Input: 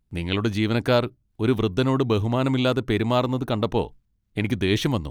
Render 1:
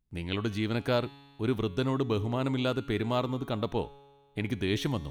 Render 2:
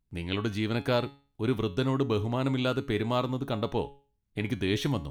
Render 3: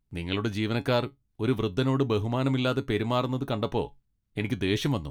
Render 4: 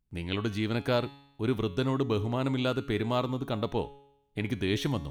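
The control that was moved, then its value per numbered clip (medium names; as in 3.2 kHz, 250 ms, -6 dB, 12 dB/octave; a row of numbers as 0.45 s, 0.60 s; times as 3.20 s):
feedback comb, decay: 1.8 s, 0.39 s, 0.15 s, 0.85 s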